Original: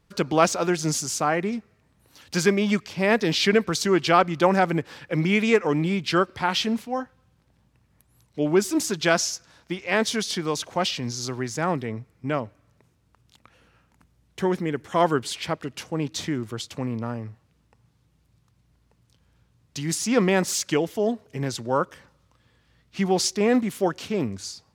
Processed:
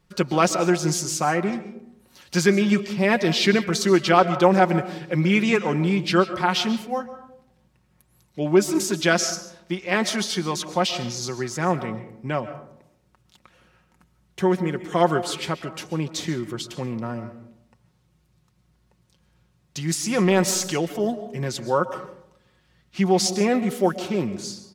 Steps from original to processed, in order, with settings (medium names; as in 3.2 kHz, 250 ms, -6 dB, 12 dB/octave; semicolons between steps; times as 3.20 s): comb 5.5 ms, depth 51%; 19.96–20.84 s: transient shaper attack -5 dB, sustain +5 dB; on a send: reverberation RT60 0.75 s, pre-delay 95 ms, DRR 12 dB